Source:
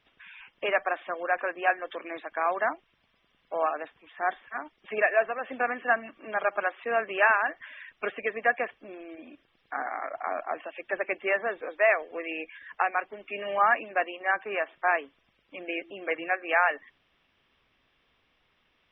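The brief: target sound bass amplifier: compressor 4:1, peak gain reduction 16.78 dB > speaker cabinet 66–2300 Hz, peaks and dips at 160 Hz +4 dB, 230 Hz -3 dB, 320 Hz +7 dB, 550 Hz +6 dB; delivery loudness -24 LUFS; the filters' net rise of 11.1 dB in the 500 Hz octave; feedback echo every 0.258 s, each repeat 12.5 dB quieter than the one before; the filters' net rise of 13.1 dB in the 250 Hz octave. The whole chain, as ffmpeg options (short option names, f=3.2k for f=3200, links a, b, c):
-af "equalizer=f=250:t=o:g=8,equalizer=f=500:t=o:g=8.5,aecho=1:1:258|516|774:0.237|0.0569|0.0137,acompressor=threshold=-33dB:ratio=4,highpass=f=66:w=0.5412,highpass=f=66:w=1.3066,equalizer=f=160:t=q:w=4:g=4,equalizer=f=230:t=q:w=4:g=-3,equalizer=f=320:t=q:w=4:g=7,equalizer=f=550:t=q:w=4:g=6,lowpass=f=2.3k:w=0.5412,lowpass=f=2.3k:w=1.3066,volume=9.5dB"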